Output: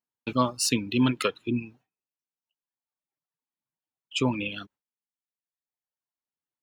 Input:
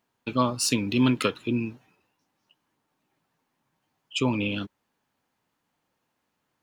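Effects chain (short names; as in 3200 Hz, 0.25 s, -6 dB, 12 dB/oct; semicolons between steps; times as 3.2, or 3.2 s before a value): reverb removal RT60 1.7 s; gate with hold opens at -47 dBFS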